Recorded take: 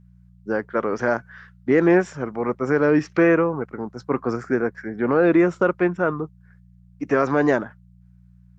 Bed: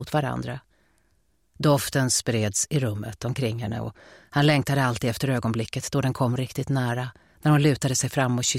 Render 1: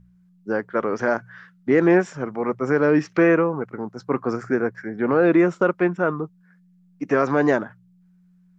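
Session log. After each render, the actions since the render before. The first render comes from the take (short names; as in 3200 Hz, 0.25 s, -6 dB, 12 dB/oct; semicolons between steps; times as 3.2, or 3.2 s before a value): de-hum 60 Hz, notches 2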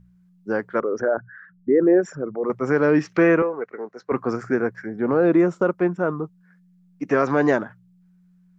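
0.8–2.5 formant sharpening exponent 2; 3.42–4.12 speaker cabinet 440–6000 Hz, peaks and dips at 440 Hz +6 dB, 880 Hz -6 dB, 1300 Hz -3 dB, 1900 Hz +6 dB, 3300 Hz -6 dB, 5000 Hz -6 dB; 4.86–6.21 bell 2500 Hz -7 dB 2 oct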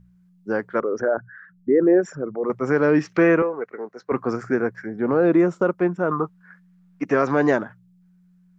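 6.11–7.05 bell 1300 Hz +13.5 dB 2.2 oct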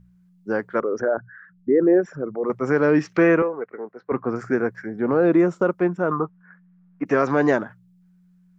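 1.04–2.15 air absorption 150 m; 3.48–4.36 air absorption 330 m; 6.19–7.06 LPF 1800 Hz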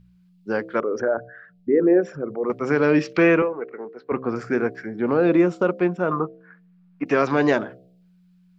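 band shelf 3400 Hz +8 dB 1.3 oct; de-hum 65.12 Hz, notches 11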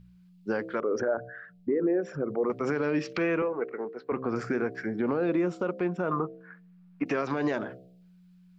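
compressor, threshold -22 dBFS, peak gain reduction 10 dB; limiter -18.5 dBFS, peak gain reduction 7 dB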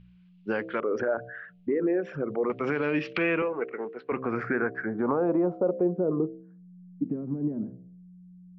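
low-pass sweep 2900 Hz -> 220 Hz, 4.03–6.79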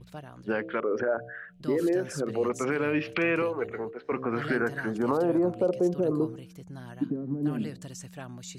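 add bed -19 dB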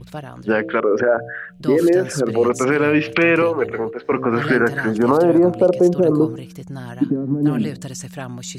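gain +11 dB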